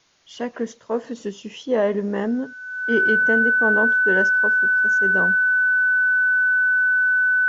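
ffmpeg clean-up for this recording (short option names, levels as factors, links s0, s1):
-af "bandreject=f=1500:w=30,agate=range=0.0891:threshold=0.0178"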